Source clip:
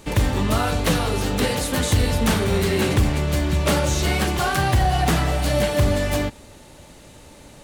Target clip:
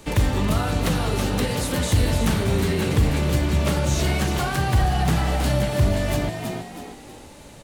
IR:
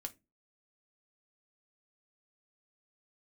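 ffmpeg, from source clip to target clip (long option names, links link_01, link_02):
-filter_complex "[0:a]asplit=5[link_01][link_02][link_03][link_04][link_05];[link_02]adelay=322,afreqshift=65,volume=-9dB[link_06];[link_03]adelay=644,afreqshift=130,volume=-17.2dB[link_07];[link_04]adelay=966,afreqshift=195,volume=-25.4dB[link_08];[link_05]adelay=1288,afreqshift=260,volume=-33.5dB[link_09];[link_01][link_06][link_07][link_08][link_09]amix=inputs=5:normalize=0,acrossover=split=200[link_10][link_11];[link_11]acompressor=threshold=-23dB:ratio=6[link_12];[link_10][link_12]amix=inputs=2:normalize=0"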